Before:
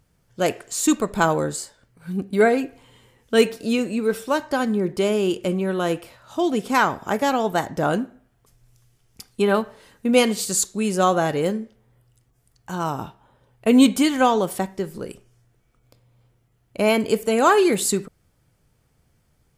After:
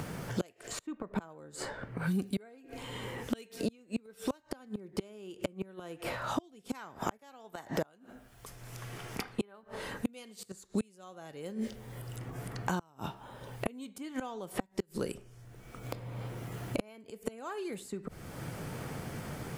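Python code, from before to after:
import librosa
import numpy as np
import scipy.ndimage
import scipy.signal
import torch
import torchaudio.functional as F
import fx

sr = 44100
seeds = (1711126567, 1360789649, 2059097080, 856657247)

y = fx.low_shelf(x, sr, hz=390.0, db=-8.5, at=(7.17, 9.63))
y = fx.gate_flip(y, sr, shuts_db=-16.0, range_db=-34)
y = fx.band_squash(y, sr, depth_pct=100)
y = F.gain(torch.from_numpy(y), 1.0).numpy()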